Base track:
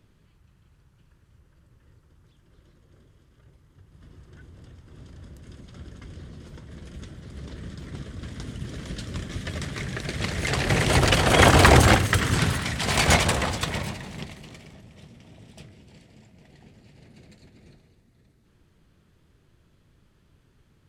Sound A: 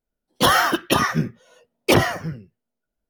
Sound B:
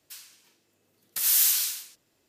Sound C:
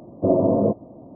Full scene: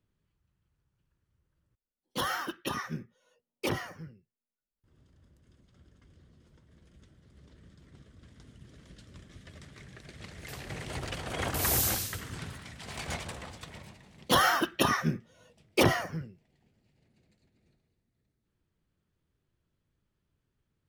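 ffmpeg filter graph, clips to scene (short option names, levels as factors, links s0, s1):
-filter_complex "[1:a]asplit=2[s0][s1];[0:a]volume=0.126[s2];[s0]bandreject=f=670:w=7.1[s3];[s2]asplit=2[s4][s5];[s4]atrim=end=1.754[s6];[s3]atrim=end=3.09,asetpts=PTS-STARTPTS,volume=0.168[s7];[s5]atrim=start=4.836[s8];[2:a]atrim=end=2.28,asetpts=PTS-STARTPTS,volume=0.422,afade=t=in:d=0.004:c=hsin,afade=t=out:st=2.276:d=0.004:c=hsin,adelay=10380[s9];[s1]atrim=end=3.09,asetpts=PTS-STARTPTS,volume=0.422,afade=t=in:d=0.004:c=hsin,afade=t=out:st=3.086:d=0.004:c=hsin,adelay=13890[s10];[s6][s7]acrossfade=d=0.004:c1=hsin:c2=hsin[s11];[s11][s8]acrossfade=d=0.004:c1=hsin:c2=hsin[s12];[s12][s9][s10]amix=inputs=3:normalize=0"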